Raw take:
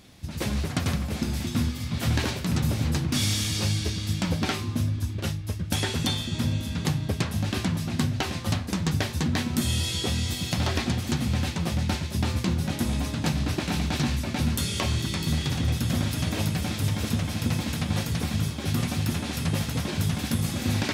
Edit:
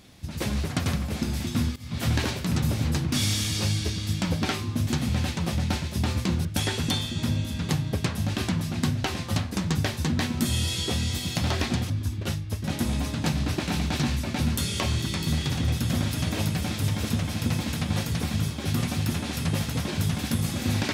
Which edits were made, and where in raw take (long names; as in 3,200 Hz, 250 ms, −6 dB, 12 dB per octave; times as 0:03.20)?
0:01.76–0:02.01: fade in, from −18.5 dB
0:04.87–0:05.61: swap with 0:11.06–0:12.64